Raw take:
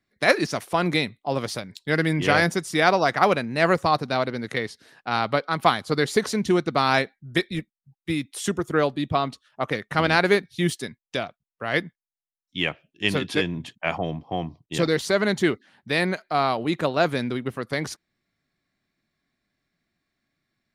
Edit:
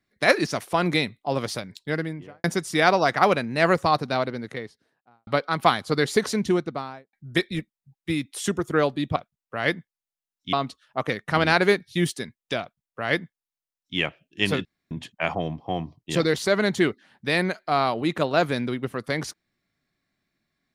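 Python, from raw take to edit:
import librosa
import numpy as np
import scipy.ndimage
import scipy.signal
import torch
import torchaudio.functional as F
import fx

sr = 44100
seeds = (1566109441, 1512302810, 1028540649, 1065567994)

y = fx.studio_fade_out(x, sr, start_s=1.64, length_s=0.8)
y = fx.studio_fade_out(y, sr, start_s=3.99, length_s=1.28)
y = fx.studio_fade_out(y, sr, start_s=6.33, length_s=0.8)
y = fx.edit(y, sr, fx.duplicate(start_s=11.24, length_s=1.37, to_s=9.16),
    fx.room_tone_fill(start_s=13.28, length_s=0.26), tone=tone)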